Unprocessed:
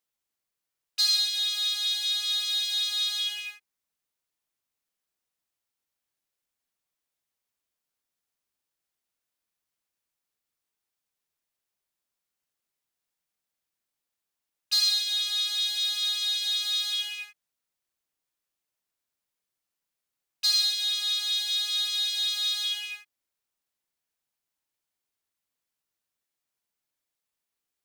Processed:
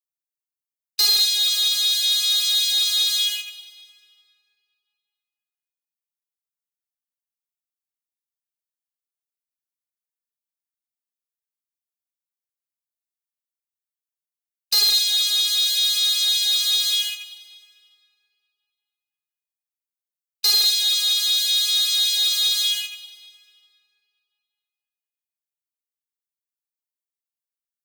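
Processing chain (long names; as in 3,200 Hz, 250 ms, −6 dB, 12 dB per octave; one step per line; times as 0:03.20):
noise gate −34 dBFS, range −23 dB
spectral tilt +4 dB per octave
in parallel at −3 dB: brickwall limiter −12.5 dBFS, peak gain reduction 9 dB
on the sum: wave folding −7.5 dBFS
convolution reverb RT60 2.7 s, pre-delay 99 ms, DRR 14.5 dB
level −3.5 dB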